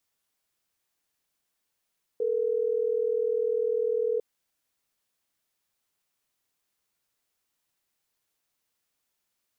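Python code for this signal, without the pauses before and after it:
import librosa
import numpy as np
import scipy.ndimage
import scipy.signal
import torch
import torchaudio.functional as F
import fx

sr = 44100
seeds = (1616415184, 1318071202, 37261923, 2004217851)

y = fx.call_progress(sr, length_s=3.12, kind='ringback tone', level_db=-26.5)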